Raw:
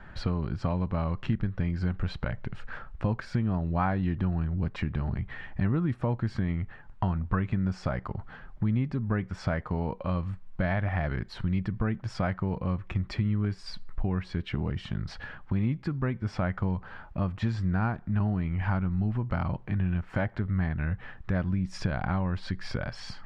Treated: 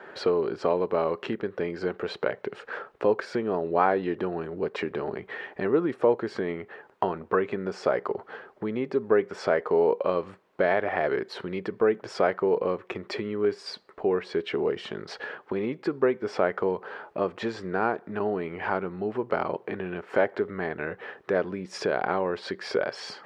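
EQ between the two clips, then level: resonant high-pass 420 Hz, resonance Q 4.9; +4.5 dB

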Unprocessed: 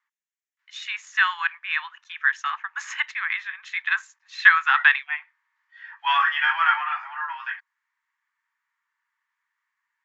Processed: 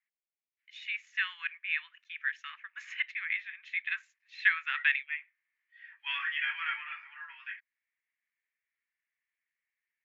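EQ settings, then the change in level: ladder band-pass 2.6 kHz, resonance 55%; 0.0 dB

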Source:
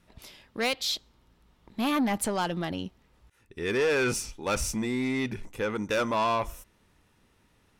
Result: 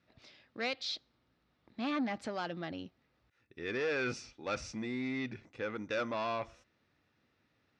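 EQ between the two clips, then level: cabinet simulation 120–5000 Hz, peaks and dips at 190 Hz -7 dB, 410 Hz -5 dB, 950 Hz -8 dB, 3.1 kHz -5 dB; -6.0 dB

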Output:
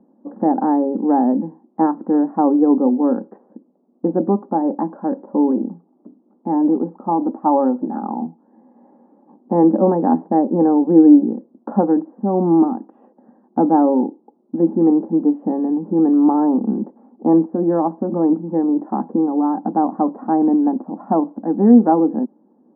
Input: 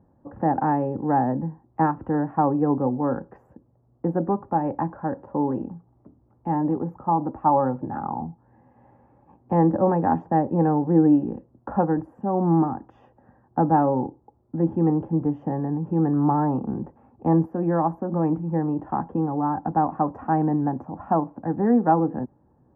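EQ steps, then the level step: brick-wall FIR high-pass 190 Hz; low-pass 1.6 kHz 12 dB/octave; tilt EQ -4.5 dB/octave; +1.0 dB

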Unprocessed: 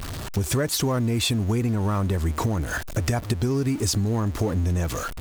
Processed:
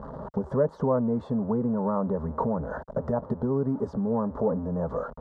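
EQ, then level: high-pass 60 Hz; resonant low-pass 750 Hz, resonance Q 5.1; static phaser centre 490 Hz, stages 8; 0.0 dB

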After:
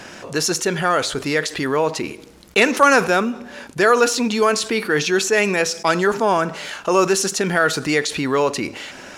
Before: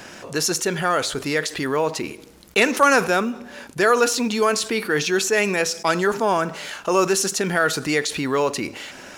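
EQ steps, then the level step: treble shelf 12 kHz -9 dB; +2.5 dB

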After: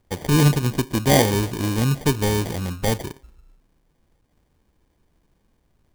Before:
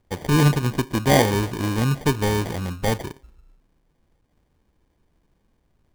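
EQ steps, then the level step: dynamic bell 1.3 kHz, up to -4 dB, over -36 dBFS, Q 0.9; treble shelf 4.9 kHz +4 dB; +1.0 dB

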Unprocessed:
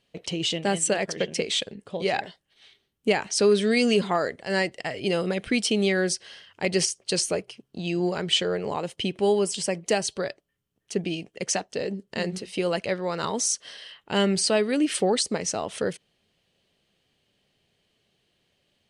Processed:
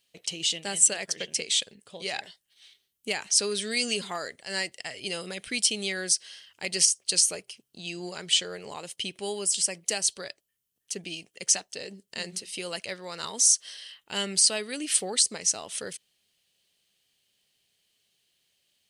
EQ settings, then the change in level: pre-emphasis filter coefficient 0.9; +6.5 dB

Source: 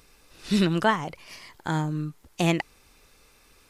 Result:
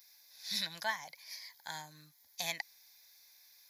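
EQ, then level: differentiator; static phaser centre 1.9 kHz, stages 8; +5.0 dB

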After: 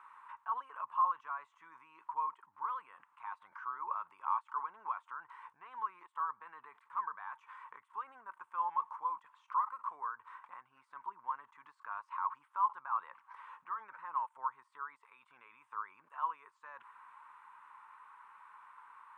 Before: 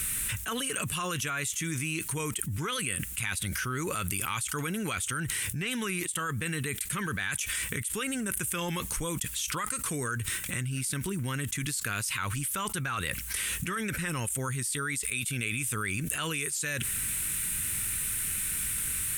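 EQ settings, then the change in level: Butterworth band-pass 990 Hz, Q 4.2; +8.0 dB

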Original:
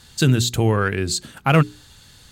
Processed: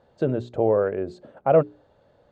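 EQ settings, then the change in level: resonant low-pass 580 Hz, resonance Q 4.9; tilt EQ +2.5 dB/octave; bass shelf 290 Hz -7.5 dB; 0.0 dB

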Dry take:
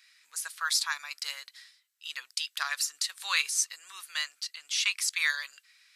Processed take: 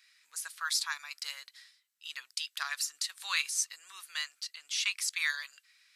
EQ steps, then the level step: dynamic bell 450 Hz, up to -5 dB, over -54 dBFS, Q 1.1; -3.5 dB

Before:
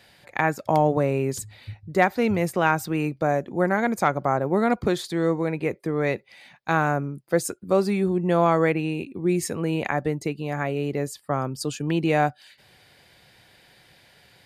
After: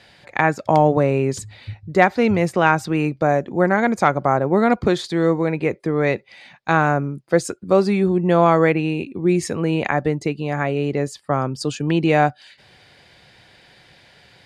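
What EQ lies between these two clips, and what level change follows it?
low-pass 6.8 kHz 12 dB/octave; +5.0 dB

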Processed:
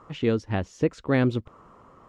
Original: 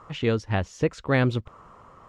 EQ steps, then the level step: peaking EQ 290 Hz +7 dB 1.5 oct; -4.0 dB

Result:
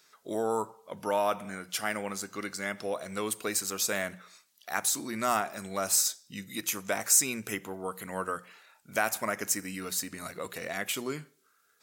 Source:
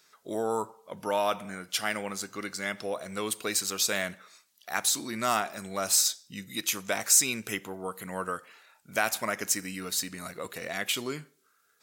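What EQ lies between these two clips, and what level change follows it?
hum notches 60/120/180 Hz; dynamic bell 3.7 kHz, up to -7 dB, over -43 dBFS, Q 1.1; 0.0 dB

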